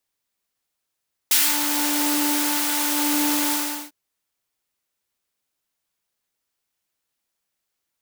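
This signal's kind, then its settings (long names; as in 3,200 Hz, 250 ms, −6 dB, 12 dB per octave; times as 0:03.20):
subtractive patch with filter wobble D4, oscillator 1 triangle, oscillator 2 saw, interval 0 semitones, oscillator 2 level −17.5 dB, sub −28.5 dB, noise −7.5 dB, filter highpass, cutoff 470 Hz, Q 0.86, filter envelope 2.5 octaves, filter decay 0.26 s, filter sustain 15%, attack 5 ms, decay 0.25 s, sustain −8 dB, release 0.39 s, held 2.21 s, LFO 0.91 Hz, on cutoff 0.3 octaves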